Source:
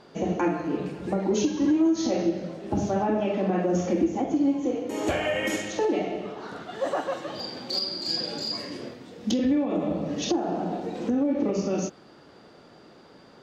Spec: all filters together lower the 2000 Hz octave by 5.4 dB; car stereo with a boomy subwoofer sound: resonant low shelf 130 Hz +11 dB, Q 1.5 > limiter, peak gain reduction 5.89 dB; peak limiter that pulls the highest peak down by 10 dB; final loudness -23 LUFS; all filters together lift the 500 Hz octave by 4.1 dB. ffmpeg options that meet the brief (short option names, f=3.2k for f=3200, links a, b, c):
-af "equalizer=f=500:t=o:g=6.5,equalizer=f=2k:t=o:g=-7,alimiter=limit=-19.5dB:level=0:latency=1,lowshelf=f=130:t=q:w=1.5:g=11,volume=7.5dB,alimiter=limit=-14.5dB:level=0:latency=1"